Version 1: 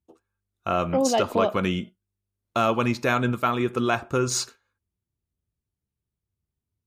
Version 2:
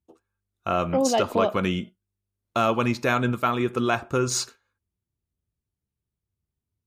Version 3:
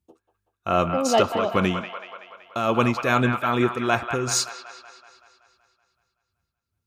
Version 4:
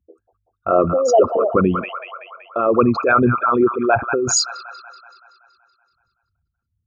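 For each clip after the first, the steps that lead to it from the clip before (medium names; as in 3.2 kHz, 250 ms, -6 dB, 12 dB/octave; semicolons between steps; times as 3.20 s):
no audible change
tremolo 2.5 Hz, depth 60%; feedback echo behind a band-pass 189 ms, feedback 59%, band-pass 1.5 kHz, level -6.5 dB; trim +4 dB
resonances exaggerated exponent 3; trim +6 dB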